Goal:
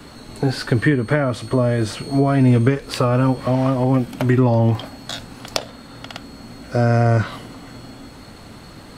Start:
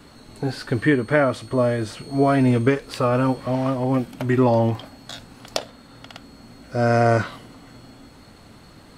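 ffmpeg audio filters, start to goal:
-filter_complex "[0:a]acrossover=split=190[s0][s1];[s1]acompressor=threshold=0.0631:ratio=6[s2];[s0][s2]amix=inputs=2:normalize=0,volume=2.24"

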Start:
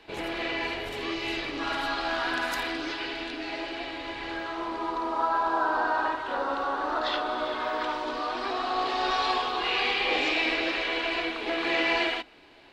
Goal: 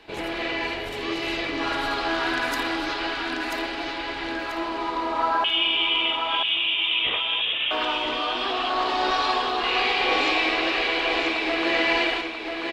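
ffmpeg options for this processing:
-filter_complex "[0:a]asettb=1/sr,asplit=3[s0][s1][s2];[s0]atrim=end=5.444[s3];[s1]atrim=start=5.44:end=7.71,asetpts=PTS-STARTPTS,afade=t=in:d=0.004:c=qsin,afade=t=out:st=2.266:d=0.004:c=qsin,lowpass=f=3300:t=q:w=0.5098,lowpass=f=3300:t=q:w=0.6013,lowpass=f=3300:t=q:w=0.9,lowpass=f=3300:t=q:w=2.563,afreqshift=-3900[s4];[s2]atrim=start=7.706[s5];[s3][s4]acrossfade=d=0.004:c1=hsin:c2=qsin[s6];[s6][s5]acrossfade=d=0.004:c1=qsin:c2=hsin,aecho=1:1:987|1974|2961|3948:0.562|0.186|0.0612|0.0202,volume=1.41"

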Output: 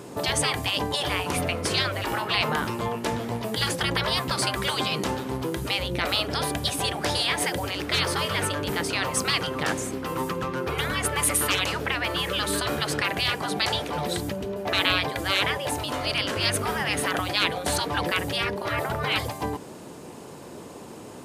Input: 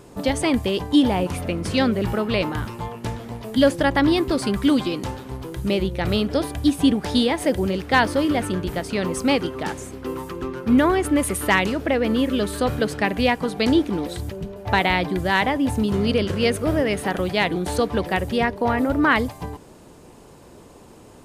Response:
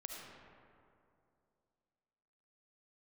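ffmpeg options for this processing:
-af "highpass=120,afftfilt=real='re*lt(hypot(re,im),0.2)':imag='im*lt(hypot(re,im),0.2)':win_size=1024:overlap=0.75,volume=1.88"

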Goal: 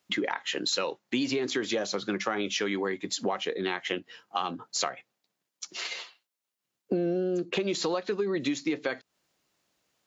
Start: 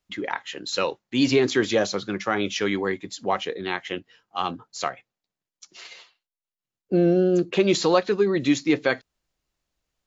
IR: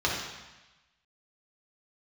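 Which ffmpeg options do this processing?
-filter_complex "[0:a]highpass=170,asplit=2[s0][s1];[s1]alimiter=limit=0.158:level=0:latency=1:release=66,volume=0.891[s2];[s0][s2]amix=inputs=2:normalize=0,acompressor=threshold=0.0398:ratio=10,volume=1.26"

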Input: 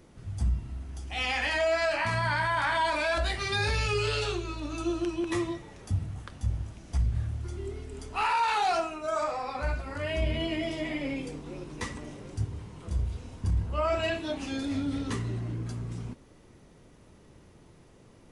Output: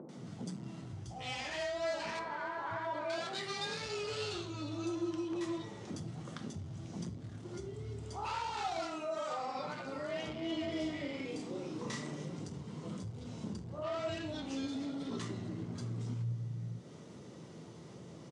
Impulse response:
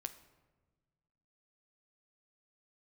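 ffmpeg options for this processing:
-filter_complex "[0:a]asoftclip=type=tanh:threshold=0.0355,asettb=1/sr,asplit=3[s0][s1][s2];[s0]atrim=end=2.104[s3];[s1]atrim=start=2.1:end=3.01,asetpts=PTS-STARTPTS,afade=t=in:d=0.004:c=qsin,afade=t=out:st=0.906:d=0.004:c=qsin,acrossover=split=230 2100:gain=0.126 1 0.112[s4][s5][s6];[s4][s5][s6]amix=inputs=3:normalize=0[s7];[s2]atrim=start=3.006[s8];[s3][s7]acrossfade=d=0.004:c1=hsin:c2=qsin[s9];[s9][s8]acrossfade=d=0.004:c1=qsin:c2=hsin,asettb=1/sr,asplit=3[s10][s11][s12];[s10]atrim=end=10.634[s13];[s11]atrim=start=10.63:end=12.16,asetpts=PTS-STARTPTS,afade=t=in:d=0.004:c=qsin,afade=t=out:st=1.526:d=0.004:c=qsin,asplit=2[s14][s15];[s15]adelay=35,volume=0.708[s16];[s14][s16]amix=inputs=2:normalize=0,atrim=end_sample=67473[s17];[s12]atrim=start=12.156[s18];[s13][s17]acrossfade=d=0.004:c1=hsin:c2=qsin[s19];[s19][s18]acrossfade=d=0.004:c1=qsin:c2=hsin,acrossover=split=150|970[s20][s21][s22];[s22]adelay=90[s23];[s20]adelay=650[s24];[s24][s21][s23]amix=inputs=3:normalize=0,acompressor=threshold=0.00501:ratio=2,flanger=delay=3.9:depth=8.7:regen=85:speed=0.23:shape=sinusoidal[s25];[1:a]atrim=start_sample=2205,atrim=end_sample=3969[s26];[s25][s26]afir=irnorm=-1:irlink=0,acompressor=mode=upward:threshold=0.00126:ratio=2.5,highpass=f=110:w=0.5412,highpass=f=110:w=1.3066,equalizer=f=160:t=q:w=4:g=8,equalizer=f=1700:t=q:w=4:g=-5,equalizer=f=2500:t=q:w=4:g=-6,lowpass=f=8100:w=0.5412,lowpass=f=8100:w=1.3066,volume=4.22"

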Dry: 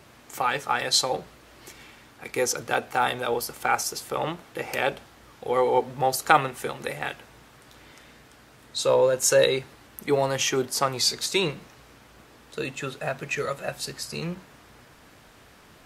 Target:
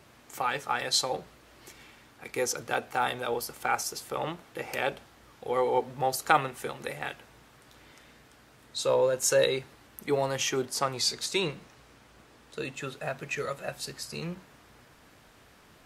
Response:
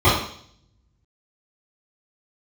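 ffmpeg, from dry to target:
-filter_complex "[0:a]asettb=1/sr,asplit=3[s0][s1][s2];[s0]atrim=end=10.604[s3];[s1]atrim=start=10.6:end=12.75,asetpts=PTS-STARTPTS,afade=t=in:d=0.004:c=qsin,afade=t=out:st=2.146:d=0.004:c=qsin,equalizer=f=13000:t=o:w=0.24:g=-6[s4];[s2]atrim=start=12.746[s5];[s3][s4]acrossfade=d=0.004:c1=hsin:c2=qsin[s6];[s6][s5]acrossfade=d=0.004:c1=qsin:c2=hsin,volume=0.596"

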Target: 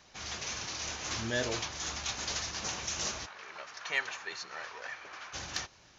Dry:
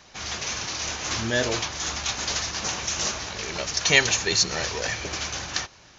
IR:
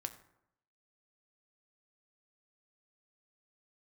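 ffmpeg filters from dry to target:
-filter_complex "[0:a]asplit=3[s0][s1][s2];[s0]afade=t=out:st=3.25:d=0.02[s3];[s1]bandpass=f=1300:t=q:w=1.4:csg=0,afade=t=in:st=3.25:d=0.02,afade=t=out:st=5.33:d=0.02[s4];[s2]afade=t=in:st=5.33:d=0.02[s5];[s3][s4][s5]amix=inputs=3:normalize=0,asoftclip=type=tanh:threshold=0.447,volume=0.398"

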